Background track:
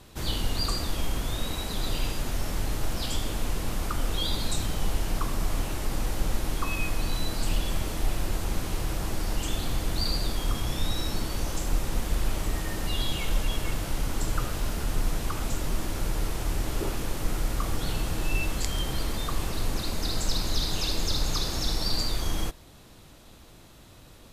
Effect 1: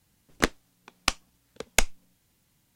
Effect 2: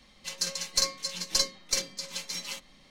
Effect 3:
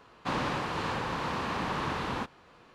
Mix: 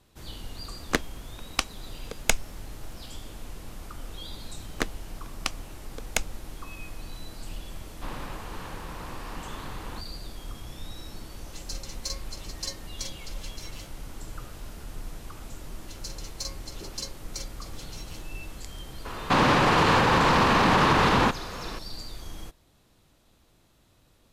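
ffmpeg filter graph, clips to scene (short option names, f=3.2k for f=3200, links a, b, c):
-filter_complex "[1:a]asplit=2[a][b];[3:a]asplit=2[c][d];[2:a]asplit=2[e][f];[0:a]volume=-11.5dB[g];[e]equalizer=f=1.6k:t=o:w=0.77:g=-4[h];[f]equalizer=f=1.6k:w=1.5:g=-6[i];[d]alimiter=level_in=29.5dB:limit=-1dB:release=50:level=0:latency=1[j];[a]atrim=end=2.75,asetpts=PTS-STARTPTS,volume=-1.5dB,afade=t=in:d=0.004:c=hsin,afade=t=out:st=2.746:d=0.004:c=hsin,adelay=510[k];[b]atrim=end=2.75,asetpts=PTS-STARTPTS,volume=-5.5dB,afade=t=in:d=0.004:c=hsin,afade=t=out:st=2.746:d=0.004:c=hsin,adelay=4380[l];[c]atrim=end=2.74,asetpts=PTS-STARTPTS,volume=-9dB,afade=t=in:d=0.004:c=hsin,afade=t=out:st=2.736:d=0.004:c=hsin,adelay=7760[m];[h]atrim=end=2.9,asetpts=PTS-STARTPTS,volume=-9dB,afade=t=in:d=0.004:c=hsin,afade=t=out:st=2.896:d=0.004:c=hsin,adelay=11280[n];[i]atrim=end=2.9,asetpts=PTS-STARTPTS,volume=-10dB,afade=t=in:d=0.004:c=hsin,afade=t=out:st=2.896:d=0.004:c=hsin,adelay=15630[o];[j]atrim=end=2.74,asetpts=PTS-STARTPTS,volume=-11dB,afade=t=in:d=0.004:c=hsin,afade=t=out:st=2.736:d=0.004:c=hsin,adelay=19050[p];[g][k][l][m][n][o][p]amix=inputs=7:normalize=0"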